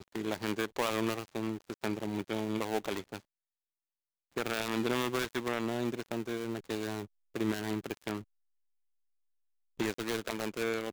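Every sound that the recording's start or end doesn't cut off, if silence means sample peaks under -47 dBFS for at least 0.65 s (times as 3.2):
4.36–8.23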